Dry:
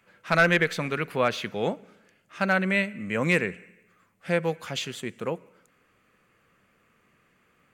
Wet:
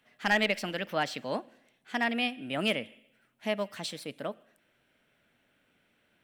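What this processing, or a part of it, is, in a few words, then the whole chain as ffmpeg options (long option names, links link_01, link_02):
nightcore: -af "asetrate=54684,aresample=44100,volume=-5.5dB"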